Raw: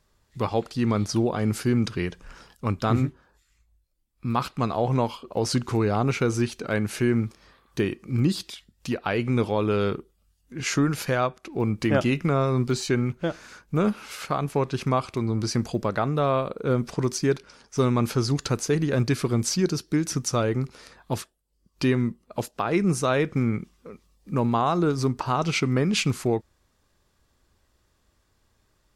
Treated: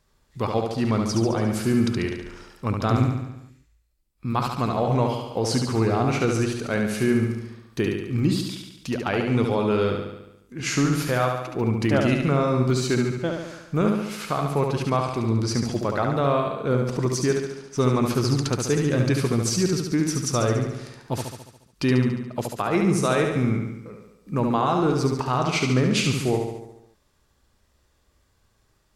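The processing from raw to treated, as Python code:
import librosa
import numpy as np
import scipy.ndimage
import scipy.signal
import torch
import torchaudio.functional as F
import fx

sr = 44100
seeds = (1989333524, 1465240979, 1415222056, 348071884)

y = fx.echo_feedback(x, sr, ms=71, feedback_pct=59, wet_db=-4.5)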